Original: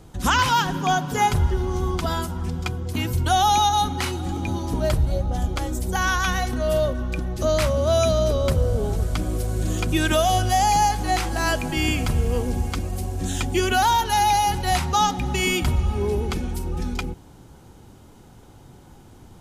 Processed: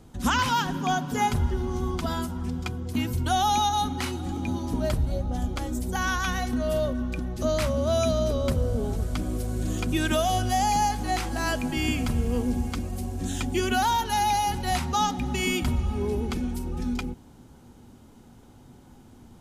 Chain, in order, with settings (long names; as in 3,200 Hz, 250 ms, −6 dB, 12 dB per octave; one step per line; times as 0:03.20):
parametric band 240 Hz +9.5 dB 0.28 octaves
level −5 dB